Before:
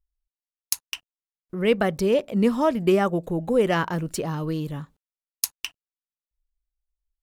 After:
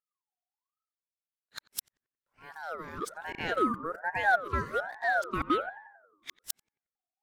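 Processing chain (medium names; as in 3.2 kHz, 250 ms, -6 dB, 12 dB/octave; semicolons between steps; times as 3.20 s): reverse the whole clip; resonant low shelf 280 Hz -9 dB, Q 3; filtered feedback delay 90 ms, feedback 61%, low-pass 1 kHz, level -15 dB; ring modulator with a swept carrier 1 kHz, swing 30%, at 1.2 Hz; trim -8.5 dB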